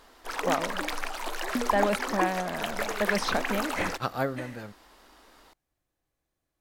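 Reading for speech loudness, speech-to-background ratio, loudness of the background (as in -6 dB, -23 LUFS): -31.5 LUFS, 0.0 dB, -31.5 LUFS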